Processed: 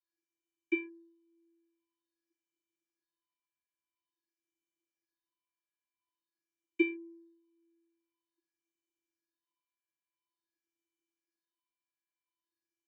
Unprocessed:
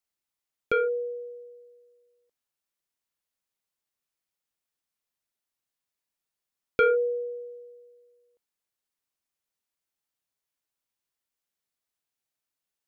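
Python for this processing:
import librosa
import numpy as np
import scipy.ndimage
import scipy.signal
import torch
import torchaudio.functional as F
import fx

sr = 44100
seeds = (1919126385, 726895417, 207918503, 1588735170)

y = fx.phaser_stages(x, sr, stages=6, low_hz=320.0, high_hz=1300.0, hz=0.48, feedback_pct=45)
y = fx.vocoder(y, sr, bands=32, carrier='square', carrier_hz=335.0)
y = y * librosa.db_to_amplitude(-4.5)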